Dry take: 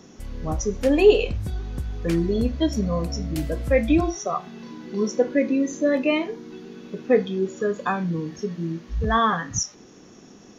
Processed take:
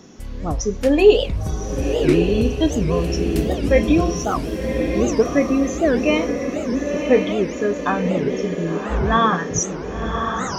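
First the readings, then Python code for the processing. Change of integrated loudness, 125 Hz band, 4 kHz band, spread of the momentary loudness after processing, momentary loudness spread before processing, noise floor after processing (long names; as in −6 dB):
+4.0 dB, +4.5 dB, +4.5 dB, 8 LU, 13 LU, −29 dBFS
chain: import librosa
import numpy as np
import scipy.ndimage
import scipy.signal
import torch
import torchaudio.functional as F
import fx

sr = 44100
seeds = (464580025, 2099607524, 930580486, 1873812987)

y = fx.echo_diffused(x, sr, ms=1090, feedback_pct=53, wet_db=-5.0)
y = fx.record_warp(y, sr, rpm=78.0, depth_cents=250.0)
y = y * librosa.db_to_amplitude(3.0)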